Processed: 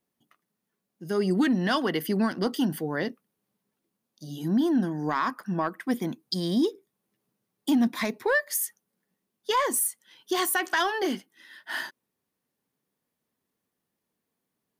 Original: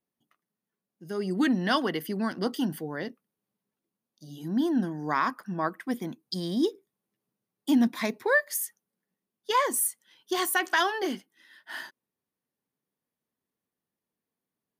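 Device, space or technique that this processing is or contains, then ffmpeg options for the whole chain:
soft clipper into limiter: -af "asoftclip=type=tanh:threshold=-14.5dB,alimiter=limit=-22.5dB:level=0:latency=1:release=406,volume=6dB"

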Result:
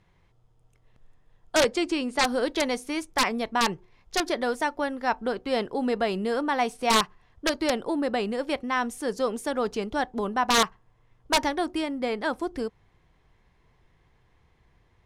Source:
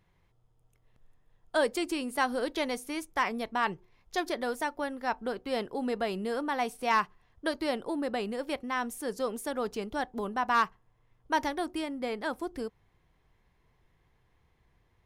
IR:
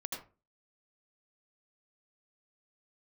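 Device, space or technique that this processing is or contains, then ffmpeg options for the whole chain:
overflowing digital effects unit: -filter_complex "[0:a]aeval=exprs='(mod(7.94*val(0)+1,2)-1)/7.94':channel_layout=same,lowpass=8700,asettb=1/sr,asplit=3[link_01][link_02][link_03];[link_01]atrim=end=1.634[link_04];[link_02]atrim=start=1.63:end=2.24,asetpts=PTS-STARTPTS,afade=type=in:duration=0.004:curve=qsin,afade=type=out:start_time=0.606:duration=0.004:curve=qsin,lowpass=7100[link_05];[link_03]atrim=start=2.236[link_06];[link_04][link_05]acrossfade=duration=0.004:curve1=hsin:curve2=qsin[link_07];[link_07][link_06]acrossfade=duration=0.004:curve1=qsin:curve2=hsin,volume=5.5dB"

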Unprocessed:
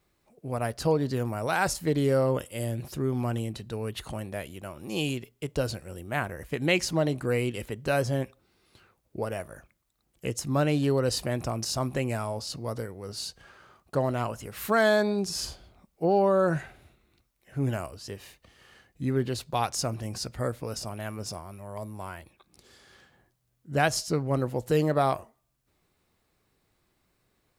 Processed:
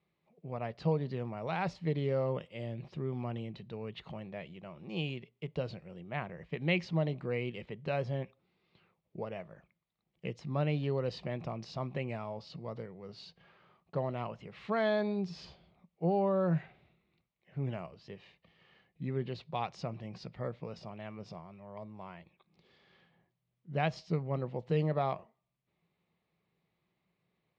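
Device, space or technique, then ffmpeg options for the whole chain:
guitar cabinet: -af "highpass=87,equalizer=frequency=89:width_type=q:width=4:gain=-8,equalizer=frequency=170:width_type=q:width=4:gain=10,equalizer=frequency=280:width_type=q:width=4:gain=-6,equalizer=frequency=1500:width_type=q:width=4:gain=-8,equalizer=frequency=2200:width_type=q:width=4:gain=3,lowpass=frequency=3800:width=0.5412,lowpass=frequency=3800:width=1.3066,volume=-7.5dB"

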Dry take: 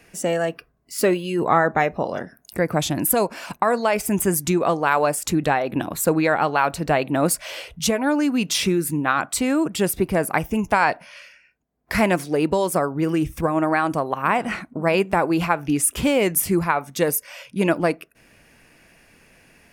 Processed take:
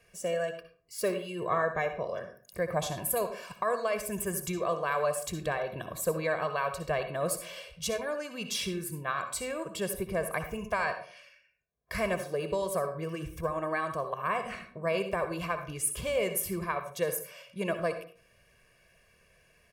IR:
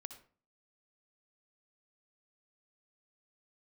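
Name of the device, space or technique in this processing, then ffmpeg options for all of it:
microphone above a desk: -filter_complex "[0:a]asettb=1/sr,asplit=3[link_01][link_02][link_03];[link_01]atrim=end=2.684[link_04];[link_02]atrim=start=2.68:end=3.12,asetpts=PTS-STARTPTS,afade=type=in:duration=0.004:curve=qsin,afade=type=out:start_time=0.436:duration=0.004:curve=qsin,equalizer=frequency=830:width=3.1:gain=10[link_05];[link_03]atrim=start=3.116[link_06];[link_04][link_05]acrossfade=duration=0.004:curve1=hsin:curve2=qsin[link_07];[link_07][link_06]acrossfade=duration=0.004:curve1=qsin:curve2=hsin,aecho=1:1:1.8:0.84[link_08];[1:a]atrim=start_sample=2205[link_09];[link_08][link_09]afir=irnorm=-1:irlink=0,volume=-8dB"

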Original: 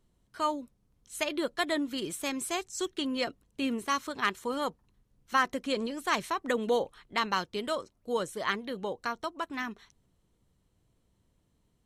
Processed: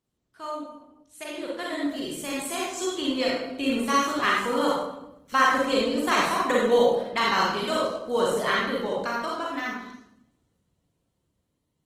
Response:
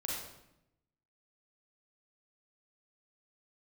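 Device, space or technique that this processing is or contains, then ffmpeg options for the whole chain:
far-field microphone of a smart speaker: -filter_complex "[1:a]atrim=start_sample=2205[link_01];[0:a][link_01]afir=irnorm=-1:irlink=0,highpass=81,dynaudnorm=framelen=600:gausssize=9:maxgain=13dB,volume=-5.5dB" -ar 48000 -c:a libopus -b:a 20k

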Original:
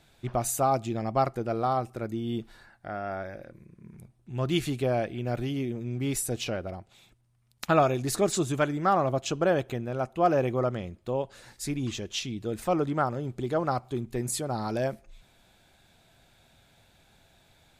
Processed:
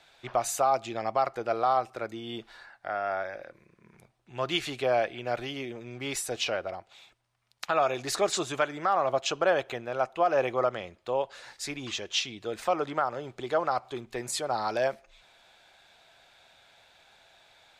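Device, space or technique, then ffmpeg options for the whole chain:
DJ mixer with the lows and highs turned down: -filter_complex "[0:a]acrossover=split=490 6400:gain=0.126 1 0.224[link_01][link_02][link_03];[link_01][link_02][link_03]amix=inputs=3:normalize=0,alimiter=limit=-20dB:level=0:latency=1:release=156,volume=5.5dB"

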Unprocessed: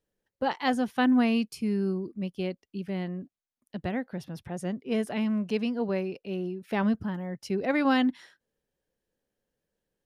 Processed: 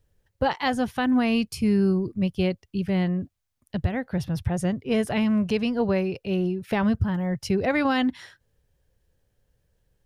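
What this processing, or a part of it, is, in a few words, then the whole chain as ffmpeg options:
car stereo with a boomy subwoofer: -af "lowshelf=frequency=150:width_type=q:width=1.5:gain=13.5,alimiter=limit=-21.5dB:level=0:latency=1:release=254,volume=8dB"

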